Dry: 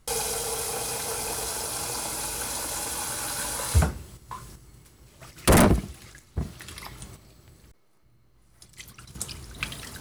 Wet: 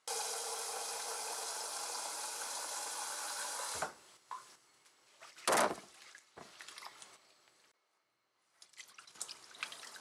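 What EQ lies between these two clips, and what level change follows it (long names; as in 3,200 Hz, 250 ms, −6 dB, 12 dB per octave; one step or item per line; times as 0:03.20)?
dynamic equaliser 2,600 Hz, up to −6 dB, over −48 dBFS, Q 1
band-pass filter 710–7,600 Hz
−5.5 dB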